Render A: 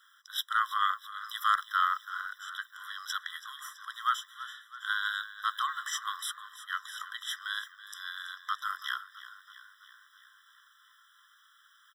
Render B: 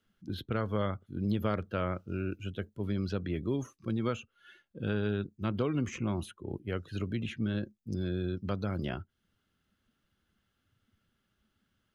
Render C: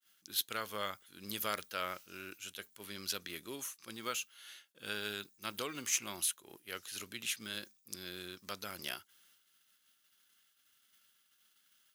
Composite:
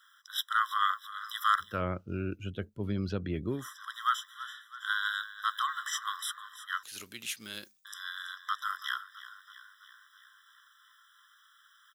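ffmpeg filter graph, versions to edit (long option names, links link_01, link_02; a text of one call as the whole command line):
ffmpeg -i take0.wav -i take1.wav -i take2.wav -filter_complex "[0:a]asplit=3[link_01][link_02][link_03];[link_01]atrim=end=1.83[link_04];[1:a]atrim=start=1.59:end=3.71[link_05];[link_02]atrim=start=3.47:end=6.832[link_06];[2:a]atrim=start=6.828:end=7.852[link_07];[link_03]atrim=start=7.848[link_08];[link_04][link_05]acrossfade=duration=0.24:curve1=tri:curve2=tri[link_09];[link_09][link_06]acrossfade=duration=0.24:curve1=tri:curve2=tri[link_10];[link_10][link_07]acrossfade=duration=0.004:curve1=hsin:curve2=hsin[link_11];[link_11][link_08]acrossfade=duration=0.004:curve1=hsin:curve2=hsin" out.wav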